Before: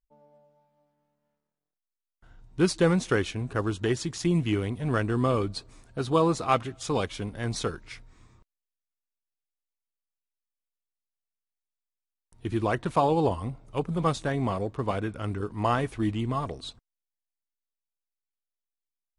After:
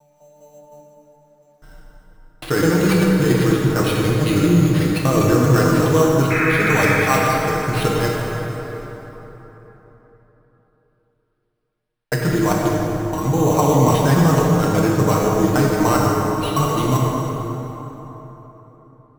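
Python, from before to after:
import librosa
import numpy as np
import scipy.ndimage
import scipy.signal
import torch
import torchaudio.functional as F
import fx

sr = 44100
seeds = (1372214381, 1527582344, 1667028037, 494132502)

p1 = fx.block_reorder(x, sr, ms=202.0, group=4)
p2 = fx.high_shelf(p1, sr, hz=6700.0, db=-11.0)
p3 = fx.hum_notches(p2, sr, base_hz=60, count=3)
p4 = p3 + 0.72 * np.pad(p3, (int(6.5 * sr / 1000.0), 0))[:len(p3)]
p5 = fx.over_compress(p4, sr, threshold_db=-26.0, ratio=-0.5)
p6 = p4 + (p5 * 10.0 ** (1.0 / 20.0))
p7 = fx.sample_hold(p6, sr, seeds[0], rate_hz=6800.0, jitter_pct=0)
p8 = fx.vibrato(p7, sr, rate_hz=0.63, depth_cents=16.0)
p9 = fx.spec_paint(p8, sr, seeds[1], shape='noise', start_s=6.3, length_s=0.72, low_hz=1200.0, high_hz=2600.0, level_db=-24.0)
y = fx.rev_plate(p9, sr, seeds[2], rt60_s=4.0, hf_ratio=0.55, predelay_ms=0, drr_db=-3.0)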